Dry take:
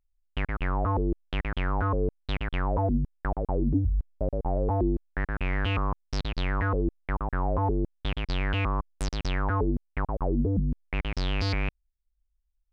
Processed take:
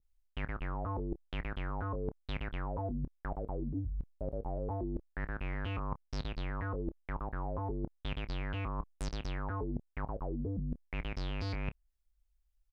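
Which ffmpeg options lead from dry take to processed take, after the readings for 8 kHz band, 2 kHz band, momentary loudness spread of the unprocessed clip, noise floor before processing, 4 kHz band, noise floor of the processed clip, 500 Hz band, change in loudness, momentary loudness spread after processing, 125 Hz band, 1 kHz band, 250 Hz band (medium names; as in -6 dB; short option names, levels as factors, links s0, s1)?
no reading, -10.5 dB, 6 LU, -75 dBFS, -10.5 dB, -76 dBFS, -10.0 dB, -10.0 dB, 4 LU, -9.5 dB, -10.5 dB, -10.0 dB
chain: -filter_complex "[0:a]areverse,acompressor=threshold=0.0158:ratio=6,areverse,asplit=2[s0][s1];[s1]adelay=28,volume=0.211[s2];[s0][s2]amix=inputs=2:normalize=0,adynamicequalizer=threshold=0.00158:dfrequency=1600:dqfactor=0.7:tfrequency=1600:tqfactor=0.7:attack=5:release=100:ratio=0.375:range=3:mode=cutabove:tftype=highshelf,volume=1.19"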